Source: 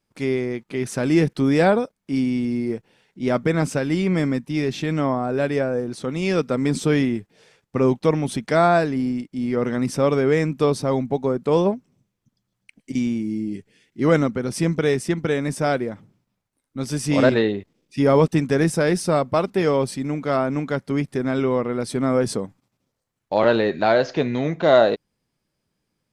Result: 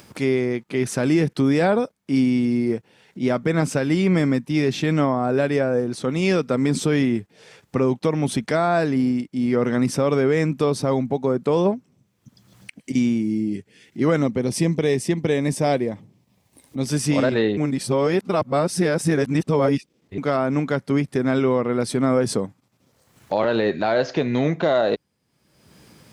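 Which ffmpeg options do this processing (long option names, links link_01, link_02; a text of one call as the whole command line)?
ffmpeg -i in.wav -filter_complex "[0:a]asettb=1/sr,asplit=3[link_01][link_02][link_03];[link_01]atrim=end=14.224[link_04];[link_02]atrim=start=14.22:end=16.86,asetpts=PTS-STARTPTS,afade=type=in:duration=0.004:curve=qsin,afade=type=out:start_time=2.636:duration=0.004:curve=qsin,equalizer=frequency=1400:width=4.4:gain=-14[link_05];[link_03]atrim=start=16.856[link_06];[link_04][link_05]acrossfade=duration=0.004:curve1=hsin:curve2=qsin[link_07];[link_07][link_06]acrossfade=duration=0.004:curve1=qsin:curve2=hsin,asplit=3[link_08][link_09][link_10];[link_08]atrim=end=17.572[link_11];[link_09]atrim=start=17.568:end=20.182,asetpts=PTS-STARTPTS,areverse[link_12];[link_10]atrim=start=20.178[link_13];[link_11][link_12]acrossfade=duration=0.004:curve1=hsin:curve2=hsin[link_14];[link_14][link_13]acrossfade=duration=0.004:curve1=hsin:curve2=hsin,highpass=frequency=57:width=0.5412,highpass=frequency=57:width=1.3066,acompressor=mode=upward:threshold=-33dB:ratio=2.5,alimiter=limit=-13dB:level=0:latency=1:release=150,volume=3dB" out.wav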